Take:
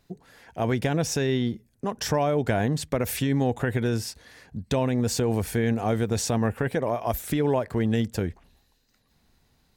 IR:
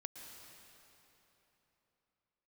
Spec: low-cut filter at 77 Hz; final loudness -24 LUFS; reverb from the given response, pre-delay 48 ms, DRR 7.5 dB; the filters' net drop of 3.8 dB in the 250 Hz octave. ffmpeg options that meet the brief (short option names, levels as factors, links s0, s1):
-filter_complex "[0:a]highpass=77,equalizer=f=250:t=o:g=-4.5,asplit=2[s0][s1];[1:a]atrim=start_sample=2205,adelay=48[s2];[s1][s2]afir=irnorm=-1:irlink=0,volume=0.631[s3];[s0][s3]amix=inputs=2:normalize=0,volume=1.41"